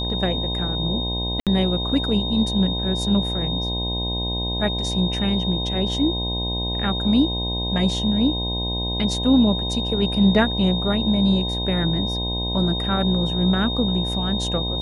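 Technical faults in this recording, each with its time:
buzz 60 Hz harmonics 17 -27 dBFS
tone 3700 Hz -26 dBFS
1.4–1.47 gap 67 ms

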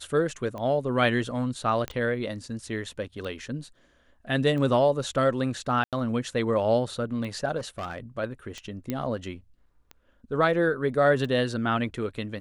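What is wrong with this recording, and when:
tick 45 rpm -25 dBFS
1.88 pop -17 dBFS
5.84–5.93 gap 87 ms
7.57–7.98 clipped -28.5 dBFS
8.9 pop -16 dBFS

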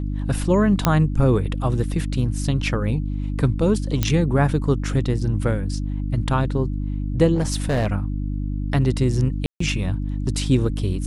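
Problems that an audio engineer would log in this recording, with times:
hum 50 Hz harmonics 6 -25 dBFS
0.85 pop -2 dBFS
4.03 pop -5 dBFS
7.34–7.87 clipped -16.5 dBFS
9.46–9.6 gap 0.144 s

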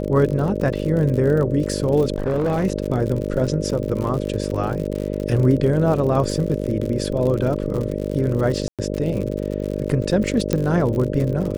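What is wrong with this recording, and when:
buzz 50 Hz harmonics 12 -25 dBFS
crackle 67/s -26 dBFS
2.16–2.65 clipped -16.5 dBFS
8.68–8.79 gap 0.107 s
10.53 pop -6 dBFS

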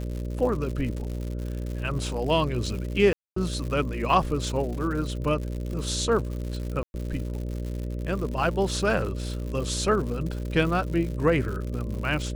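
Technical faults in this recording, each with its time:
buzz 60 Hz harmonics 10 -31 dBFS
crackle 150/s -33 dBFS
3.13–3.36 gap 0.234 s
6.83–6.94 gap 0.111 s
9.02 gap 2.4 ms

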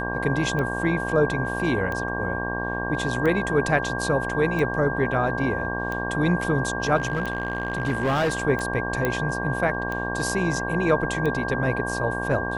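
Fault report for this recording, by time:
buzz 60 Hz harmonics 19 -30 dBFS
tick 45 rpm -17 dBFS
tone 1600 Hz -29 dBFS
6.96–8.43 clipped -19 dBFS
9.05 pop -10 dBFS

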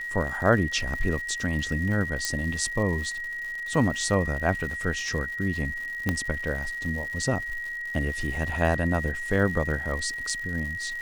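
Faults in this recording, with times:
crackle 220/s -35 dBFS
tone 1900 Hz -31 dBFS
2.25 pop -11 dBFS
6.09 pop -11 dBFS

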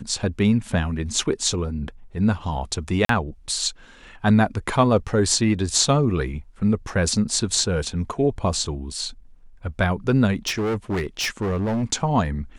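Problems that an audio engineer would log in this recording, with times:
3.05–3.09 gap 43 ms
10.47–11.84 clipped -20.5 dBFS

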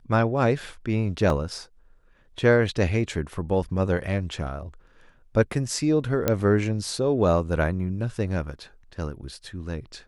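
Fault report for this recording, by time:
1.3 gap 2.1 ms
6.28 pop -7 dBFS

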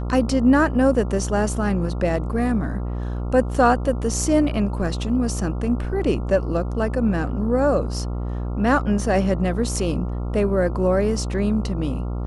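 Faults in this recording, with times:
buzz 60 Hz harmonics 23 -26 dBFS

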